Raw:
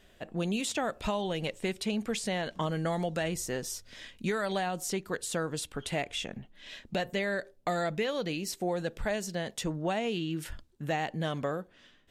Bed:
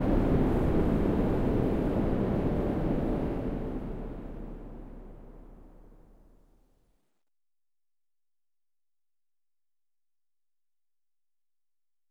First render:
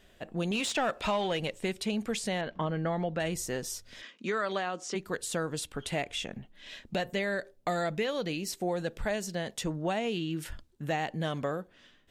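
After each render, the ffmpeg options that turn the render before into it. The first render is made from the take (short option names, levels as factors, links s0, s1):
-filter_complex "[0:a]asettb=1/sr,asplit=3[s0][s1][s2];[s0]atrim=end=0.514[s3];[s1]atrim=start=0.51:end=1.4,asetpts=PTS-STARTPTS,afade=t=in:d=0.004:c=qsin,afade=t=out:st=0.886:d=0.004:c=qsin,asplit=2[s4][s5];[s5]highpass=f=720:p=1,volume=4.47,asoftclip=type=tanh:threshold=0.106[s6];[s4][s6]amix=inputs=2:normalize=0,lowpass=f=3700:p=1,volume=0.501[s7];[s2]atrim=start=1.396[s8];[s3][s7]acrossfade=d=0.004:c1=hsin:c2=qsin[s9];[s9][s8]acrossfade=d=0.004:c1=qsin:c2=hsin,asettb=1/sr,asplit=3[s10][s11][s12];[s10]atrim=end=2.414[s13];[s11]atrim=start=2.41:end=3.2,asetpts=PTS-STARTPTS,afade=t=in:d=0.004:c=qsin,afade=t=out:st=0.786:d=0.004:c=qsin,lowpass=2600[s14];[s12]atrim=start=3.196[s15];[s13][s14]acrossfade=d=0.004:c1=hsin:c2=qsin[s16];[s16][s15]acrossfade=d=0.004:c1=qsin:c2=hsin,asplit=3[s17][s18][s19];[s17]afade=t=out:st=4.01:d=0.02[s20];[s18]highpass=f=220:w=0.5412,highpass=f=220:w=1.3066,equalizer=f=820:t=q:w=4:g=-5,equalizer=f=1200:t=q:w=4:g=7,equalizer=f=4100:t=q:w=4:g=-4,lowpass=f=6600:w=0.5412,lowpass=f=6600:w=1.3066,afade=t=in:st=4.01:d=0.02,afade=t=out:st=4.94:d=0.02[s21];[s19]afade=t=in:st=4.94:d=0.02[s22];[s20][s21][s22]amix=inputs=3:normalize=0"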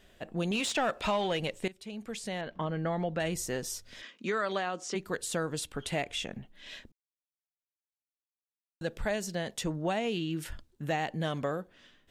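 -filter_complex "[0:a]asplit=4[s0][s1][s2][s3];[s0]atrim=end=1.68,asetpts=PTS-STARTPTS,afade=t=out:st=1.676:d=0.004:c=hsin:silence=0.11885[s4];[s1]atrim=start=1.68:end=6.92,asetpts=PTS-STARTPTS,afade=t=in:d=1.71:c=qsin:silence=0.11885,afade=t=out:st=5.236:d=0.004:c=hsin[s5];[s2]atrim=start=6.92:end=8.81,asetpts=PTS-STARTPTS,volume=0[s6];[s3]atrim=start=8.81,asetpts=PTS-STARTPTS,afade=t=in:d=0.004:c=hsin[s7];[s4][s5][s6][s7]concat=n=4:v=0:a=1"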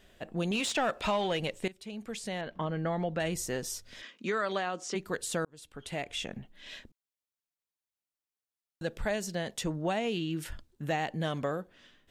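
-filter_complex "[0:a]asplit=2[s0][s1];[s0]atrim=end=5.45,asetpts=PTS-STARTPTS,afade=t=out:st=5.446:d=0.004:c=hsin[s2];[s1]atrim=start=5.45,asetpts=PTS-STARTPTS,afade=t=in:d=0.82[s3];[s2][s3]concat=n=2:v=0:a=1"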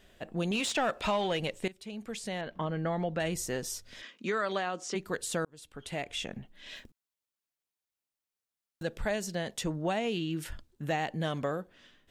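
-filter_complex "[0:a]asettb=1/sr,asplit=3[s0][s1][s2];[s0]atrim=end=6.764[s3];[s1]atrim=start=6.76:end=8.83,asetpts=PTS-STARTPTS,afade=t=in:d=0.004:c=qsin,afade=t=out:st=2.066:d=0.004:c=qsin,acrusher=bits=5:mode=log:mix=0:aa=0.000001[s4];[s2]atrim=start=8.826[s5];[s3][s4]acrossfade=d=0.004:c1=hsin:c2=qsin[s6];[s6][s5]acrossfade=d=0.004:c1=qsin:c2=hsin"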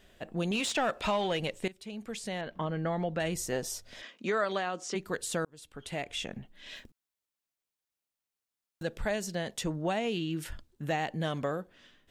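-filter_complex "[0:a]asettb=1/sr,asplit=3[s0][s1][s2];[s0]atrim=end=3.524[s3];[s1]atrim=start=3.52:end=4.44,asetpts=PTS-STARTPTS,afade=t=in:d=0.004:c=qsin,afade=t=out:st=0.916:d=0.004:c=qsin,equalizer=f=680:t=o:w=0.77:g=7[s4];[s2]atrim=start=4.436[s5];[s3][s4]acrossfade=d=0.004:c1=hsin:c2=qsin[s6];[s6][s5]acrossfade=d=0.004:c1=qsin:c2=hsin"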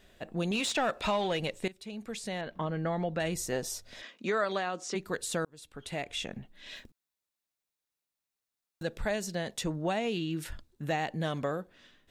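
-af "equalizer=f=3900:t=o:w=0.23:g=2.5,bandreject=f=3100:w=22"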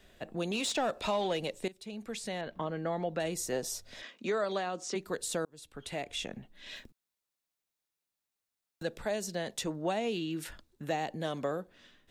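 -filter_complex "[0:a]acrossover=split=210|1000|3100[s0][s1][s2][s3];[s0]acompressor=threshold=0.00398:ratio=6[s4];[s2]alimiter=level_in=3.76:limit=0.0631:level=0:latency=1:release=500,volume=0.266[s5];[s4][s1][s5][s3]amix=inputs=4:normalize=0"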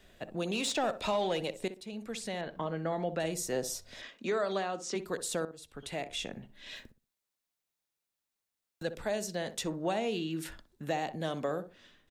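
-filter_complex "[0:a]asplit=2[s0][s1];[s1]adelay=62,lowpass=f=1200:p=1,volume=0.282,asplit=2[s2][s3];[s3]adelay=62,lowpass=f=1200:p=1,volume=0.25,asplit=2[s4][s5];[s5]adelay=62,lowpass=f=1200:p=1,volume=0.25[s6];[s0][s2][s4][s6]amix=inputs=4:normalize=0"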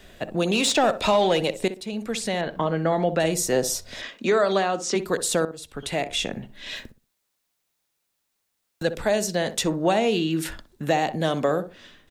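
-af "volume=3.55"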